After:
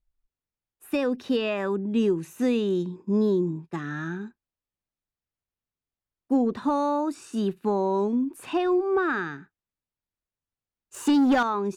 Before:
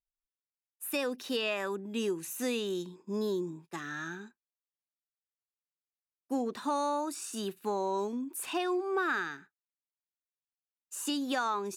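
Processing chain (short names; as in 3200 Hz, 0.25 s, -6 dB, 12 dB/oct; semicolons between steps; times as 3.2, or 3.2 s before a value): RIAA curve playback; 10.94–11.43 sample leveller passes 2; gain +4.5 dB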